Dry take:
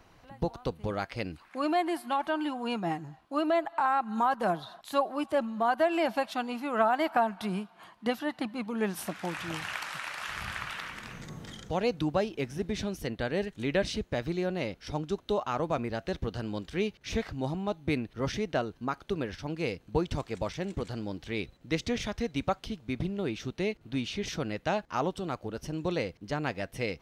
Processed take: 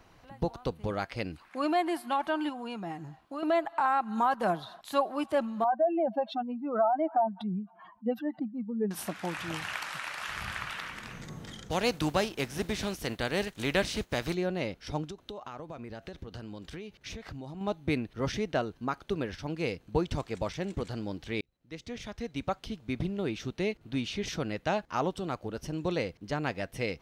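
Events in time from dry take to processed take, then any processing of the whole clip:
2.49–3.43 s: compression 2.5:1, threshold -37 dBFS
5.64–8.91 s: spectral contrast enhancement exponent 2.4
11.70–14.33 s: spectral contrast reduction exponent 0.69
15.07–17.61 s: compression 16:1, threshold -37 dBFS
21.41–22.90 s: fade in

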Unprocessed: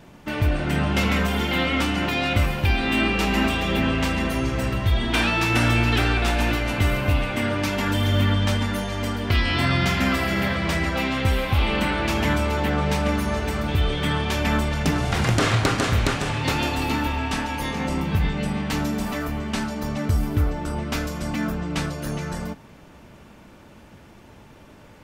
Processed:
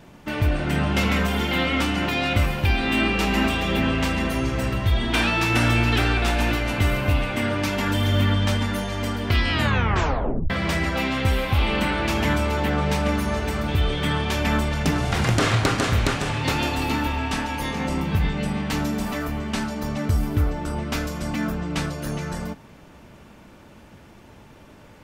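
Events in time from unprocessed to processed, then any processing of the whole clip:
9.51 s: tape stop 0.99 s

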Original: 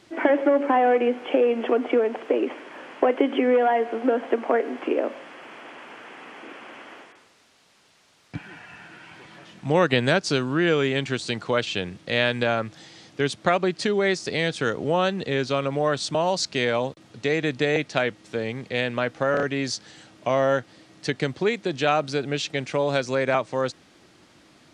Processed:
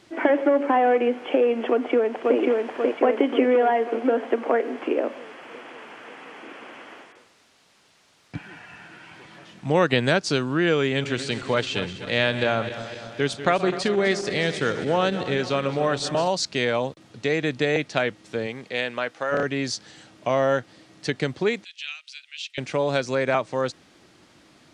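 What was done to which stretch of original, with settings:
1.70–2.37 s: echo throw 540 ms, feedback 60%, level -1.5 dB
10.79–16.28 s: backward echo that repeats 127 ms, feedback 76%, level -12 dB
18.46–19.31 s: high-pass 240 Hz -> 840 Hz 6 dB/octave
21.64–22.58 s: ladder high-pass 2.3 kHz, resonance 50%

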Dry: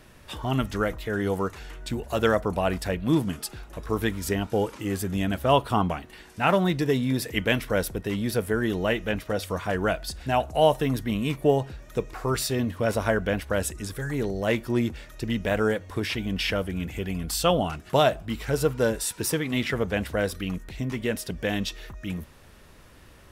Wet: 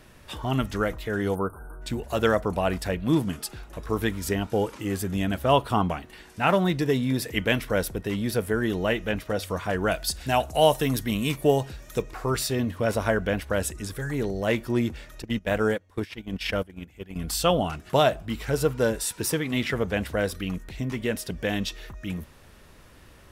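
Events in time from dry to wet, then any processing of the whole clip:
1.35–1.82 s: spectral selection erased 1.6–8.4 kHz
9.91–12.02 s: treble shelf 3.5 kHz +9.5 dB
15.22–17.16 s: gate -28 dBFS, range -18 dB

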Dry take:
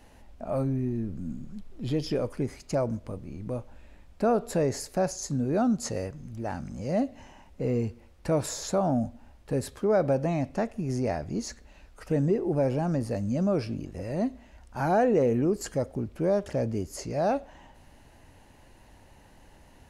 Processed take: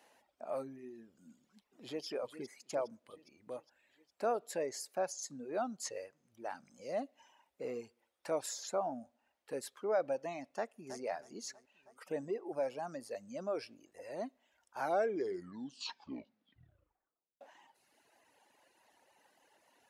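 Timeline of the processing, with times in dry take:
1.31–2.05 s: echo throw 410 ms, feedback 60%, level -7 dB
10.49–11.01 s: echo throw 320 ms, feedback 60%, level -9.5 dB
14.79 s: tape stop 2.62 s
whole clip: reverb removal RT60 1.7 s; high-pass 480 Hz 12 dB/octave; trim -6 dB

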